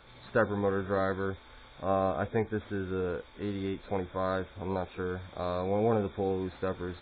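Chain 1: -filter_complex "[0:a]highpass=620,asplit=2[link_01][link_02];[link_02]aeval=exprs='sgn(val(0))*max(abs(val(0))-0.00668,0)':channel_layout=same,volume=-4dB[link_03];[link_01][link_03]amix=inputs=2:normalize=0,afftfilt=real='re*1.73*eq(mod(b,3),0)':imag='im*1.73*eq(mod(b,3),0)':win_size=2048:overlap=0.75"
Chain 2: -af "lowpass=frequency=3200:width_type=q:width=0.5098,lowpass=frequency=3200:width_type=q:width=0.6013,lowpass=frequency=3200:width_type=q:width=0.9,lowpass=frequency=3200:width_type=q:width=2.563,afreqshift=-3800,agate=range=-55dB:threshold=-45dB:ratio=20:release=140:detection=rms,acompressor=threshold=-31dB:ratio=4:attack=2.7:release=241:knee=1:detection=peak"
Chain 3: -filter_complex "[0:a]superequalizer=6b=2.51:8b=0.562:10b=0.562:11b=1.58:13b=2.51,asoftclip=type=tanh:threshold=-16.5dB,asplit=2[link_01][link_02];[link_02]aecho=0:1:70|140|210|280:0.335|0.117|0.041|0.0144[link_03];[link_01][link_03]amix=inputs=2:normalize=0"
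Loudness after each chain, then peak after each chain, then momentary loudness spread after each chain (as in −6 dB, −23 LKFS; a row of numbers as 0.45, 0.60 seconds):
−36.0, −35.0, −31.5 LKFS; −14.5, −22.5, −17.5 dBFS; 11, 3, 6 LU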